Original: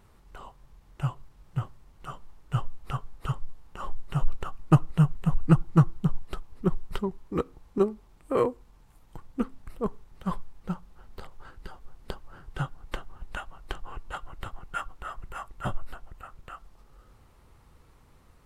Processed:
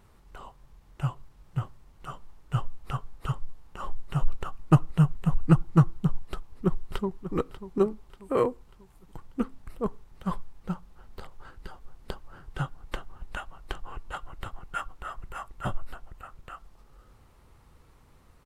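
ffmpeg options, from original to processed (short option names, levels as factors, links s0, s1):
-filter_complex "[0:a]asplit=2[s0][s1];[s1]afade=t=in:st=6.22:d=0.01,afade=t=out:st=7.34:d=0.01,aecho=0:1:590|1180|1770|2360:0.237137|0.106712|0.0480203|0.0216091[s2];[s0][s2]amix=inputs=2:normalize=0"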